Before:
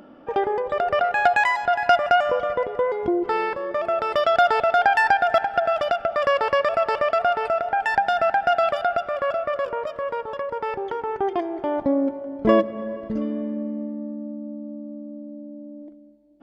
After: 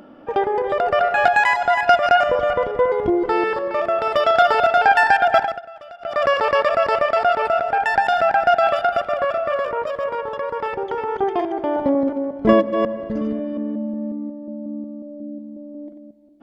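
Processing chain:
delay that plays each chunk backwards 181 ms, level −6 dB
0:02.27–0:03.33: low-shelf EQ 120 Hz +8.5 dB
0:05.43–0:06.18: duck −19.5 dB, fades 0.17 s
level +2.5 dB

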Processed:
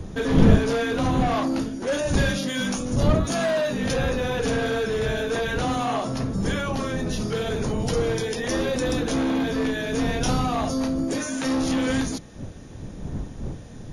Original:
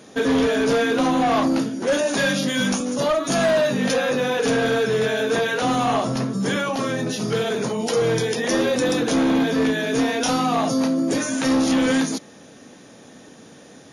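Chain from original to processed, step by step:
wind on the microphone 180 Hz −22 dBFS
in parallel at −9.5 dB: soft clipping −19 dBFS, distortion −7 dB
on the sum: level −6.5 dB

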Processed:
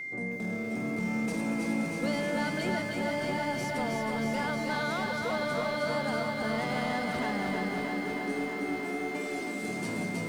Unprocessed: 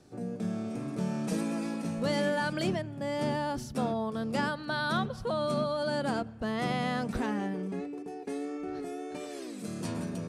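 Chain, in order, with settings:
high-pass filter 130 Hz
in parallel at +0.5 dB: brickwall limiter −29.5 dBFS, peak gain reduction 10.5 dB
on the sum: soft clipping −23 dBFS, distortion −17 dB
on a send: feedback echo with a high-pass in the loop 331 ms, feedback 74%, high-pass 420 Hz, level −8 dB
on the sum: steady tone 2,100 Hz −31 dBFS
feedback echo at a low word length 316 ms, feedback 80%, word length 9 bits, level −5 dB
level −4.5 dB

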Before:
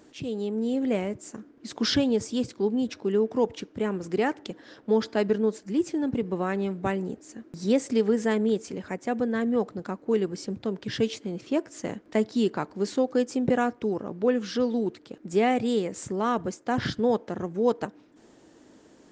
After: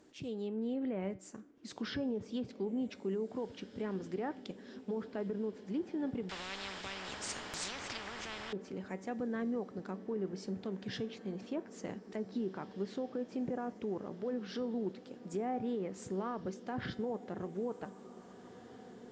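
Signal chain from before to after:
treble cut that deepens with the level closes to 1,200 Hz, closed at −19.5 dBFS
brickwall limiter −20.5 dBFS, peak gain reduction 9 dB
tuned comb filter 190 Hz, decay 0.41 s, harmonics all, mix 50%
feedback delay with all-pass diffusion 1,915 ms, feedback 65%, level −16 dB
0:06.29–0:08.53: every bin compressed towards the loudest bin 10 to 1
level −3.5 dB

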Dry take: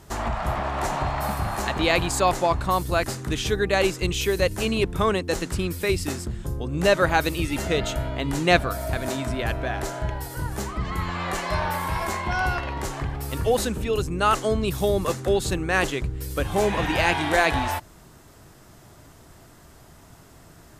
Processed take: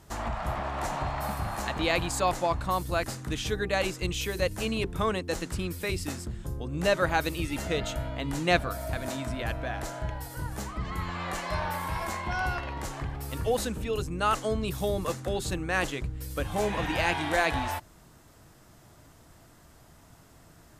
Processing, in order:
notch filter 390 Hz, Q 13
level −5.5 dB

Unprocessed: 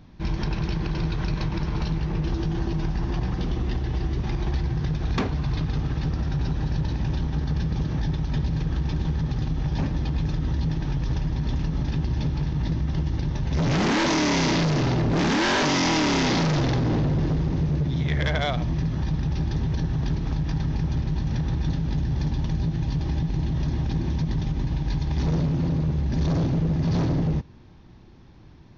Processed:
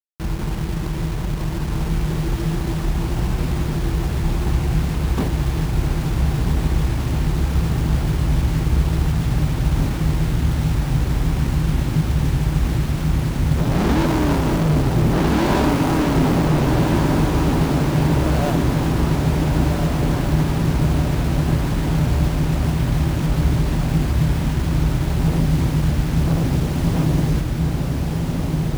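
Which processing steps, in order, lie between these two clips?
running median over 25 samples
bit-depth reduction 6 bits, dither none
feedback delay with all-pass diffusion 1,472 ms, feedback 73%, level −3 dB
level +2.5 dB

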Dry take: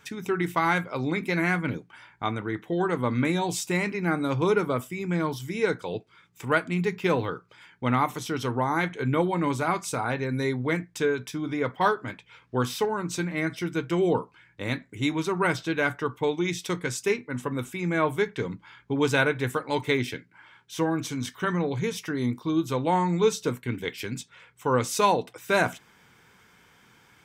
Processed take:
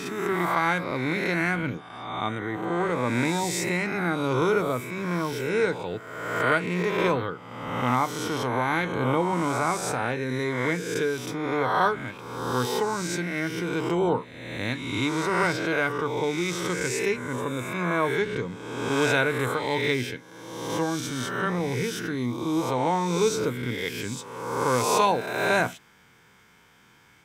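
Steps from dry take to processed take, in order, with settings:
peak hold with a rise ahead of every peak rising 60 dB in 1.29 s
level −2.5 dB

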